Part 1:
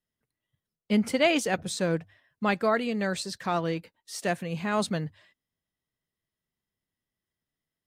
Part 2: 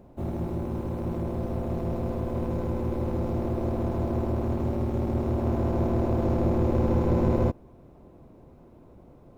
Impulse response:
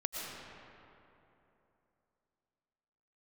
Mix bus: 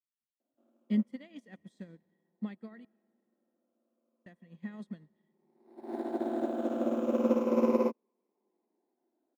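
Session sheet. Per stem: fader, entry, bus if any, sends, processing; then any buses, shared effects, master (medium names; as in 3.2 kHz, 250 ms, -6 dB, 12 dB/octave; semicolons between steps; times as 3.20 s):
-11.0 dB, 0.00 s, muted 2.85–4.26 s, send -16.5 dB, compression 2:1, threshold -35 dBFS, peak gain reduction 9.5 dB; small resonant body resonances 220/1900/3300 Hz, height 17 dB, ringing for 30 ms
0.0 dB, 0.40 s, no send, drifting ripple filter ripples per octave 0.84, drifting -0.32 Hz, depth 10 dB; steep high-pass 210 Hz 72 dB/octave; auto duck -23 dB, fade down 1.55 s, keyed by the first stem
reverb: on, RT60 3.0 s, pre-delay 75 ms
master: upward expansion 2.5:1, over -40 dBFS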